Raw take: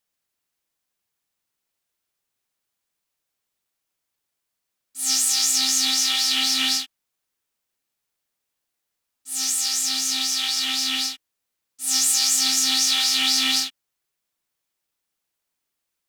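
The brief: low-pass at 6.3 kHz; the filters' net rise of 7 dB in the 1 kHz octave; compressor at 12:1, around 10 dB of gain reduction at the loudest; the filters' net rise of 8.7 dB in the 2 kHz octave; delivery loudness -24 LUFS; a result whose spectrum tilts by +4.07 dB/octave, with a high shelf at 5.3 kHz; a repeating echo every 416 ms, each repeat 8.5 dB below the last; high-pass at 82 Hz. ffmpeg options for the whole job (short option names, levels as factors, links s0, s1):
-af "highpass=82,lowpass=6300,equalizer=f=1000:t=o:g=7,equalizer=f=2000:t=o:g=8.5,highshelf=f=5300:g=4.5,acompressor=threshold=0.0708:ratio=12,aecho=1:1:416|832|1248|1664:0.376|0.143|0.0543|0.0206,volume=1.06"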